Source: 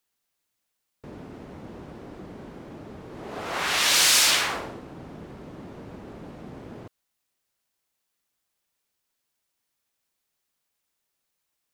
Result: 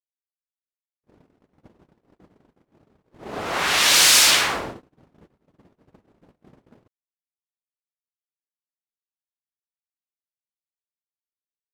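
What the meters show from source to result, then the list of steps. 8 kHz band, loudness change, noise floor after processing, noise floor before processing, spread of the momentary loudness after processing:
+4.5 dB, +5.0 dB, under -85 dBFS, -80 dBFS, 18 LU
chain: gate -37 dBFS, range -44 dB; gain +4.5 dB

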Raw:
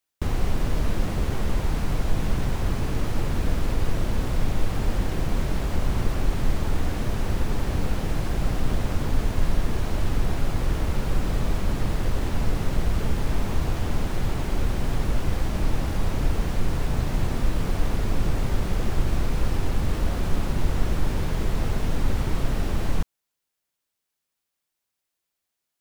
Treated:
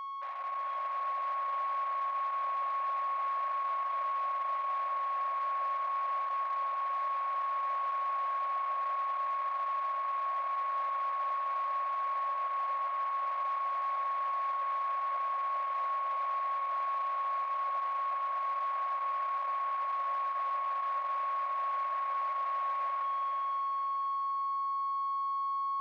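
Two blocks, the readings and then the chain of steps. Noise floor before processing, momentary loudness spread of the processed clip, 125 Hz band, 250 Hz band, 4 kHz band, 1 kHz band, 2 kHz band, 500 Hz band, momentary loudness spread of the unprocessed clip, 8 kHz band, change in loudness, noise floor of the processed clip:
-82 dBFS, 0 LU, under -40 dB, under -40 dB, under -15 dB, +9.0 dB, -7.5 dB, -14.0 dB, 1 LU, under -30 dB, -5.0 dB, -35 dBFS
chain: octaver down 1 oct, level -5 dB; steep low-pass 2500 Hz 48 dB/oct; whine 1100 Hz -26 dBFS; soft clip -21 dBFS, distortion -10 dB; added harmonics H 3 -15 dB, 6 -38 dB, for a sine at -21 dBFS; brick-wall FIR high-pass 530 Hz; on a send: diffused feedback echo 0.496 s, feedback 48%, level -3.5 dB; on the sum: gain -6 dB

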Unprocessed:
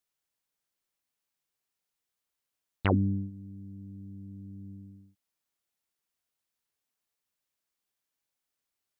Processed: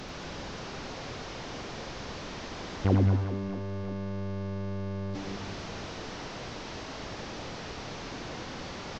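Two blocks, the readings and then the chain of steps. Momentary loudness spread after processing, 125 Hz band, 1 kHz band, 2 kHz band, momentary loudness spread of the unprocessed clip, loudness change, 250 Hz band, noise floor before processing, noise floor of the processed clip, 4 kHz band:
12 LU, +5.5 dB, +6.5 dB, +7.0 dB, 18 LU, -5.0 dB, +3.0 dB, under -85 dBFS, -41 dBFS, +14.5 dB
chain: delta modulation 32 kbps, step -27.5 dBFS; tilt shelf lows +8.5 dB, about 1100 Hz; reverse bouncing-ball echo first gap 90 ms, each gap 1.4×, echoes 5; gain -6 dB

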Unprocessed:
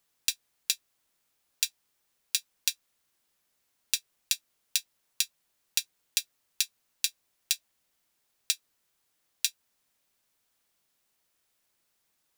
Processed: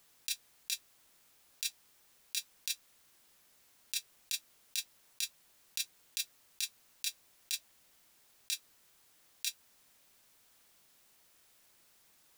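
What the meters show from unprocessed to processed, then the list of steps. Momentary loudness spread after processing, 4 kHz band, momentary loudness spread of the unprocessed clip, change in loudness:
1 LU, -7.0 dB, 0 LU, -7.5 dB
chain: negative-ratio compressor -35 dBFS, ratio -1; gain +1 dB

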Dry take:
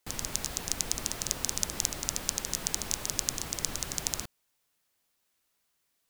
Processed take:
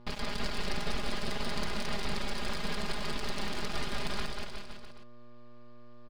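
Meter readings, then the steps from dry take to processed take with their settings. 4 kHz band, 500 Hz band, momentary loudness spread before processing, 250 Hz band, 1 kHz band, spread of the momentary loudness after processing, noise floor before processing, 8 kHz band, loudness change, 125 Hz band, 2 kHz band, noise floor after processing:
-2.0 dB, +5.5 dB, 3 LU, +5.5 dB, +5.0 dB, 9 LU, -77 dBFS, -18.0 dB, -5.0 dB, +2.0 dB, +4.5 dB, -45 dBFS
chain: self-modulated delay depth 0.11 ms; in parallel at -1 dB: limiter -11.5 dBFS, peak gain reduction 7.5 dB; on the sum: downsampling 11025 Hz; buzz 120 Hz, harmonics 9, -51 dBFS -7 dB/oct; half-wave rectifier; comb 4.9 ms, depth 77%; on a send: bouncing-ball echo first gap 0.19 s, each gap 0.9×, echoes 5

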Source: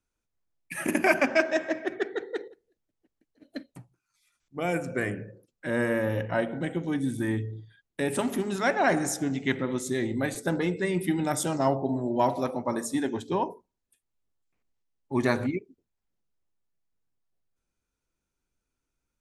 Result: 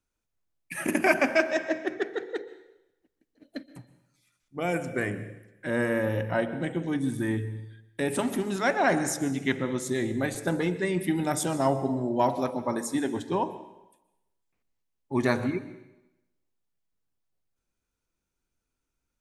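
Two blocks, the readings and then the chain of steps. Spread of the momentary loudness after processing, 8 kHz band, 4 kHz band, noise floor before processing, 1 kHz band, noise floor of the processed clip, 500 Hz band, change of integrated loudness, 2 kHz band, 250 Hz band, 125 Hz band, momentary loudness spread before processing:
14 LU, 0.0 dB, 0.0 dB, -84 dBFS, 0.0 dB, -83 dBFS, 0.0 dB, 0.0 dB, 0.0 dB, 0.0 dB, +0.5 dB, 14 LU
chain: plate-style reverb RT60 0.92 s, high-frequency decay 1×, pre-delay 0.11 s, DRR 14.5 dB

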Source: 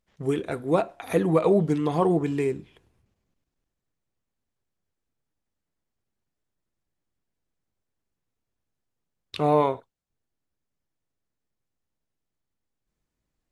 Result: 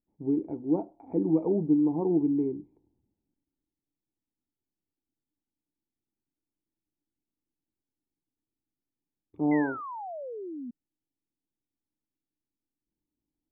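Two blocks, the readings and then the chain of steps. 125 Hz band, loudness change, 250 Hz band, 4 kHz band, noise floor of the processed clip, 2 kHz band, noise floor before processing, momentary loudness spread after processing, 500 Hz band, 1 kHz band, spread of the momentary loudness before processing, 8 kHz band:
-8.0 dB, -4.0 dB, +1.0 dB, under -35 dB, under -85 dBFS, -2.5 dB, -84 dBFS, 14 LU, -8.0 dB, -10.0 dB, 8 LU, n/a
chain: vocal tract filter u; painted sound fall, 9.51–10.71, 230–2100 Hz -42 dBFS; gain +4 dB

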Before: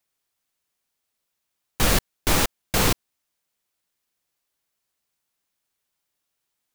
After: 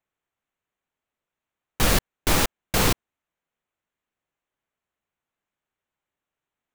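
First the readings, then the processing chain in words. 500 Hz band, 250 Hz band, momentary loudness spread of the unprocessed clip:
0.0 dB, 0.0 dB, 3 LU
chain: Wiener smoothing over 9 samples

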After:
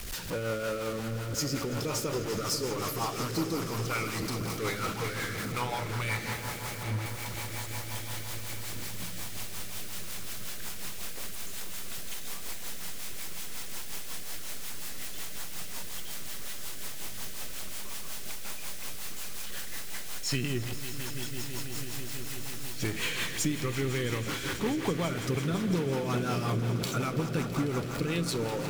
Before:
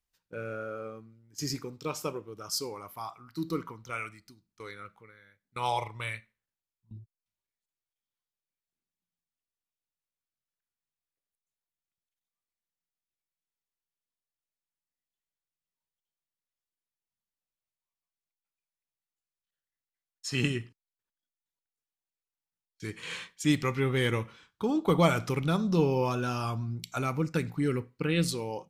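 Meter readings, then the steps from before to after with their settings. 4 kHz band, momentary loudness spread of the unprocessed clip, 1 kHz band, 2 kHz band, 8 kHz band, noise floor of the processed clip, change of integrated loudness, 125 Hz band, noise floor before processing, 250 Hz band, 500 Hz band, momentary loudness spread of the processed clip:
+4.5 dB, 18 LU, -0.5 dB, +2.5 dB, +9.0 dB, -36 dBFS, -2.5 dB, +1.0 dB, under -85 dBFS, -0.5 dB, -0.5 dB, 8 LU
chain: zero-crossing step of -32 dBFS; compressor, threshold -30 dBFS, peak gain reduction 13 dB; swelling echo 0.165 s, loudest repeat 5, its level -13.5 dB; rotary speaker horn 5.5 Hz; gain +3.5 dB

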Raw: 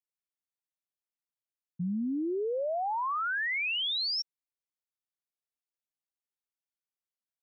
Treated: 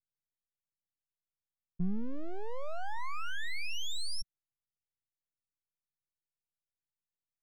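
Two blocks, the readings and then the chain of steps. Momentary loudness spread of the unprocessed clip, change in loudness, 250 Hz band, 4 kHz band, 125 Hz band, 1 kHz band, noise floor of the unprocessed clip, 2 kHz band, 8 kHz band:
6 LU, -9.0 dB, -6.5 dB, -10.0 dB, -1.0 dB, -10.5 dB, under -85 dBFS, -10.0 dB, n/a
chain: half-wave rectifier; low-pass opened by the level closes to 360 Hz, open at -36 dBFS; resonant low shelf 210 Hz +11.5 dB, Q 1.5; gain -4.5 dB

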